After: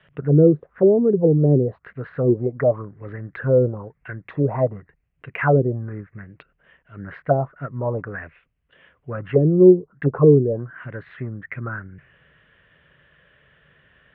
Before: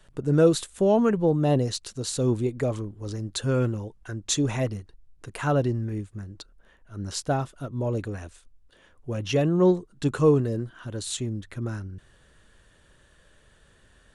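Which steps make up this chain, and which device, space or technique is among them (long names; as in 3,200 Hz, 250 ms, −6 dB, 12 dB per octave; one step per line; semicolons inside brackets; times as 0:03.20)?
envelope filter bass rig (envelope-controlled low-pass 370–3,300 Hz down, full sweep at −18 dBFS; loudspeaker in its box 84–2,300 Hz, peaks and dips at 97 Hz −5 dB, 150 Hz +6 dB, 220 Hz −5 dB, 330 Hz −7 dB, 870 Hz −5 dB, 2,000 Hz +4 dB)
level +2.5 dB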